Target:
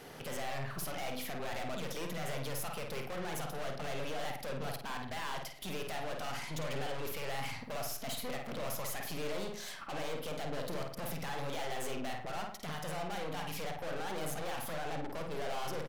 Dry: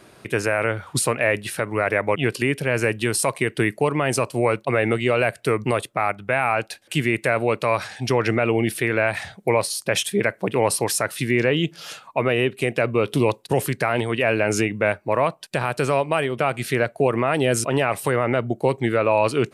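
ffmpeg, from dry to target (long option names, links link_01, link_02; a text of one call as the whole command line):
ffmpeg -i in.wav -filter_complex "[0:a]aeval=exprs='(tanh(44.7*val(0)+0.65)-tanh(0.65))/44.7':channel_layout=same,alimiter=level_in=12.5dB:limit=-24dB:level=0:latency=1:release=65,volume=-12.5dB,asplit=2[link_01][link_02];[link_02]adelay=63,lowpass=frequency=2700:poles=1,volume=-3dB,asplit=2[link_03][link_04];[link_04]adelay=63,lowpass=frequency=2700:poles=1,volume=0.51,asplit=2[link_05][link_06];[link_06]adelay=63,lowpass=frequency=2700:poles=1,volume=0.51,asplit=2[link_07][link_08];[link_08]adelay=63,lowpass=frequency=2700:poles=1,volume=0.51,asplit=2[link_09][link_10];[link_10]adelay=63,lowpass=frequency=2700:poles=1,volume=0.51,asplit=2[link_11][link_12];[link_12]adelay=63,lowpass=frequency=2700:poles=1,volume=0.51,asplit=2[link_13][link_14];[link_14]adelay=63,lowpass=frequency=2700:poles=1,volume=0.51[link_15];[link_01][link_03][link_05][link_07][link_09][link_11][link_13][link_15]amix=inputs=8:normalize=0,asetrate=54243,aresample=44100,volume=1dB" out.wav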